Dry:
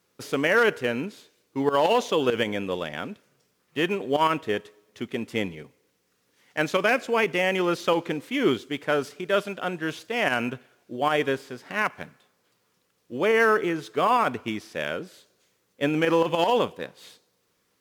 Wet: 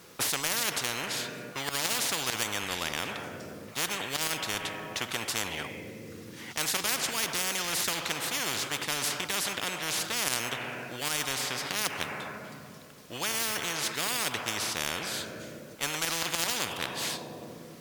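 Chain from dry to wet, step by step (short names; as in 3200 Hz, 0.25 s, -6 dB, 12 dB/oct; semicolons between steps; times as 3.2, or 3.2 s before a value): on a send at -16 dB: reverb RT60 2.0 s, pre-delay 6 ms; on the sum: spectral compressor 10:1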